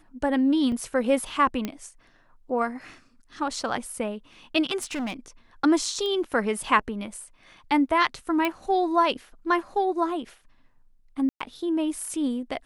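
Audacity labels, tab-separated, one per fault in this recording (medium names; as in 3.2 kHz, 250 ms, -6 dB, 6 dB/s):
0.720000	0.720000	dropout 2.3 ms
1.650000	1.650000	pop -15 dBFS
4.820000	5.140000	clipped -27 dBFS
6.060000	6.060000	pop -20 dBFS
8.450000	8.450000	pop -12 dBFS
11.290000	11.400000	dropout 115 ms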